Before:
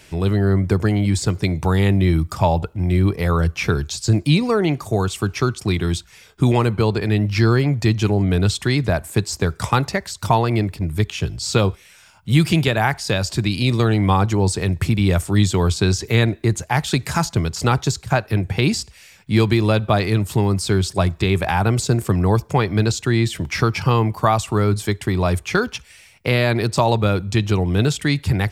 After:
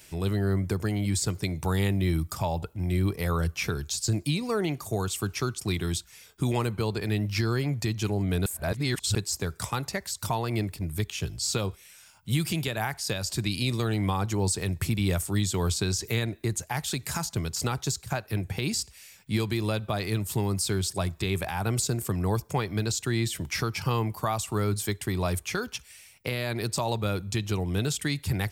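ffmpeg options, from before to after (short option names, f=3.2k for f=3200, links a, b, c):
-filter_complex "[0:a]asplit=3[a][b][c];[a]atrim=end=8.462[d];[b]atrim=start=8.458:end=9.152,asetpts=PTS-STARTPTS,areverse[e];[c]atrim=start=9.148[f];[d][e]acrossfade=d=0.004:c1=hsin:c2=hsin[g];[g][f]acrossfade=d=0.004:c1=hsin:c2=hsin,aemphasis=mode=production:type=50kf,alimiter=limit=-7.5dB:level=0:latency=1:release=254,volume=-9dB"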